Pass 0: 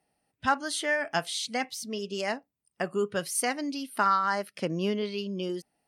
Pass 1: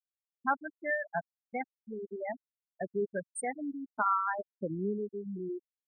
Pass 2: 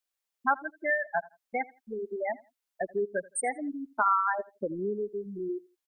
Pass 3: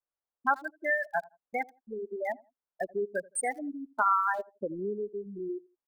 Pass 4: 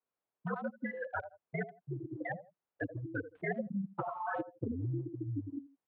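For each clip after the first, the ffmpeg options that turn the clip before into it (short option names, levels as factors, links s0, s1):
-af "afftfilt=real='re*gte(hypot(re,im),0.141)':imag='im*gte(hypot(re,im),0.141)':win_size=1024:overlap=0.75,volume=0.631"
-filter_complex "[0:a]equalizer=f=140:w=0.9:g=-15,asplit=2[s0][s1];[s1]acompressor=threshold=0.01:ratio=6,volume=1.12[s2];[s0][s2]amix=inputs=2:normalize=0,aecho=1:1:83|166:0.0794|0.0191,volume=1.33"
-filter_complex "[0:a]lowshelf=f=490:g=-3,acrossover=split=1400[s0][s1];[s1]aeval=exprs='val(0)*gte(abs(val(0)),0.00266)':c=same[s2];[s0][s2]amix=inputs=2:normalize=0"
-af "afftfilt=real='re*lt(hypot(re,im),0.158)':imag='im*lt(hypot(re,im),0.158)':win_size=1024:overlap=0.75,highshelf=f=2400:g=-10,highpass=f=160:t=q:w=0.5412,highpass=f=160:t=q:w=1.307,lowpass=f=3300:t=q:w=0.5176,lowpass=f=3300:t=q:w=0.7071,lowpass=f=3300:t=q:w=1.932,afreqshift=-81,volume=2"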